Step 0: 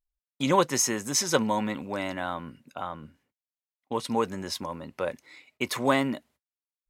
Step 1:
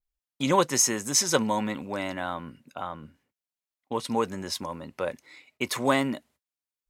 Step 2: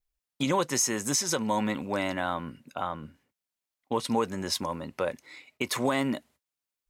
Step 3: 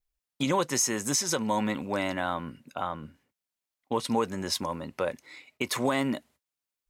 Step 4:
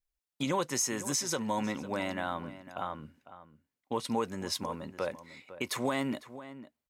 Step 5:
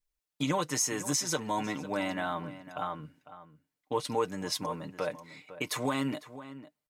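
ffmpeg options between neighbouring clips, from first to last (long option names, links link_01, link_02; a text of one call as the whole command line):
ffmpeg -i in.wav -af "adynamicequalizer=threshold=0.01:dfrequency=8200:dqfactor=0.78:tfrequency=8200:tqfactor=0.78:attack=5:release=100:ratio=0.375:range=2:mode=boostabove:tftype=bell" out.wav
ffmpeg -i in.wav -af "alimiter=limit=-17.5dB:level=0:latency=1:release=247,volume=2.5dB" out.wav
ffmpeg -i in.wav -af anull out.wav
ffmpeg -i in.wav -filter_complex "[0:a]asplit=2[link_01][link_02];[link_02]adelay=501.5,volume=-14dB,highshelf=frequency=4000:gain=-11.3[link_03];[link_01][link_03]amix=inputs=2:normalize=0,volume=-4.5dB" out.wav
ffmpeg -i in.wav -af "aecho=1:1:6.6:0.58" out.wav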